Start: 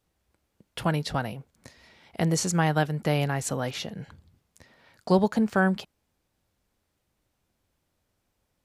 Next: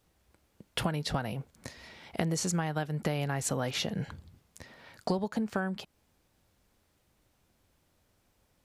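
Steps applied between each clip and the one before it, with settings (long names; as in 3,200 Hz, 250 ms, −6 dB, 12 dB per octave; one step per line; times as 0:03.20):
downward compressor 20 to 1, threshold −32 dBFS, peak gain reduction 17.5 dB
level +5 dB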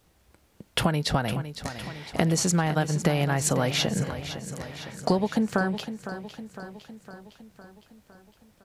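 repeating echo 508 ms, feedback 59%, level −11.5 dB
level +7 dB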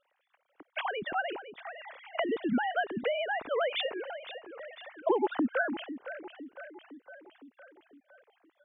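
three sine waves on the formant tracks
level −6.5 dB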